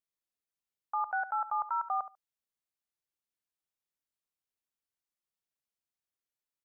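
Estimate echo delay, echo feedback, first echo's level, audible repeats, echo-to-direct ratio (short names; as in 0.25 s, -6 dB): 72 ms, 15%, -14.0 dB, 2, -14.0 dB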